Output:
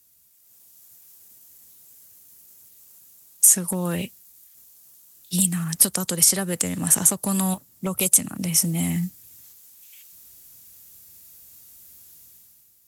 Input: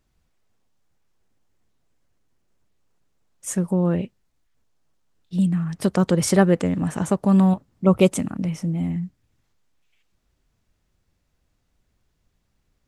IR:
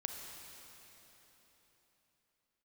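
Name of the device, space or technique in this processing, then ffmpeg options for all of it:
FM broadcast chain: -filter_complex "[0:a]highpass=75,dynaudnorm=framelen=100:gausssize=11:maxgain=11dB,acrossover=split=170|760|5800[link_01][link_02][link_03][link_04];[link_01]acompressor=threshold=-25dB:ratio=4[link_05];[link_02]acompressor=threshold=-22dB:ratio=4[link_06];[link_03]acompressor=threshold=-27dB:ratio=4[link_07];[link_04]acompressor=threshold=-35dB:ratio=4[link_08];[link_05][link_06][link_07][link_08]amix=inputs=4:normalize=0,aemphasis=mode=production:type=75fm,alimiter=limit=-11.5dB:level=0:latency=1:release=404,asoftclip=type=hard:threshold=-14dB,lowpass=frequency=15000:width=0.5412,lowpass=frequency=15000:width=1.3066,aemphasis=mode=production:type=75fm,volume=-3dB"

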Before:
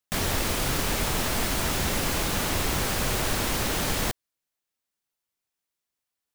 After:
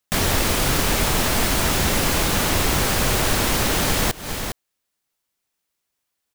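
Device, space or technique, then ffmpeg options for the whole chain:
ducked delay: -filter_complex "[0:a]asplit=3[link_01][link_02][link_03];[link_02]adelay=407,volume=-7dB[link_04];[link_03]apad=whole_len=297959[link_05];[link_04][link_05]sidechaincompress=threshold=-42dB:ratio=5:attack=16:release=159[link_06];[link_01][link_06]amix=inputs=2:normalize=0,volume=6.5dB"

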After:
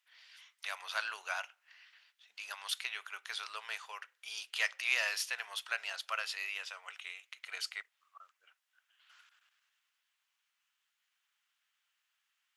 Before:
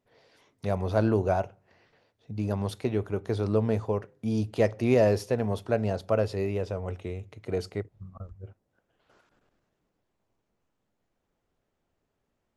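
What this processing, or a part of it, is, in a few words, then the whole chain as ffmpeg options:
headphones lying on a table: -af "highpass=frequency=1400:width=0.5412,highpass=frequency=1400:width=1.3066,equalizer=frequency=3000:width_type=o:width=0.53:gain=6,volume=5dB"

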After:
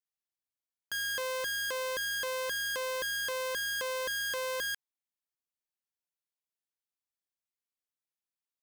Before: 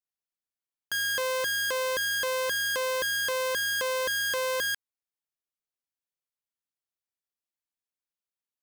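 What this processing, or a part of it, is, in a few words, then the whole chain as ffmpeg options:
exciter from parts: -filter_complex "[0:a]asplit=2[link_01][link_02];[link_02]highpass=frequency=2200:poles=1,asoftclip=type=tanh:threshold=-30.5dB,volume=-12dB[link_03];[link_01][link_03]amix=inputs=2:normalize=0,volume=-6dB"

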